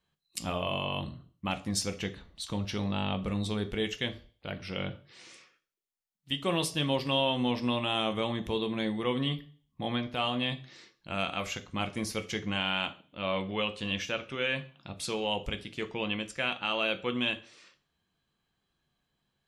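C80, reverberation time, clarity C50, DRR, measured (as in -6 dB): 21.0 dB, 0.40 s, 16.5 dB, 7.5 dB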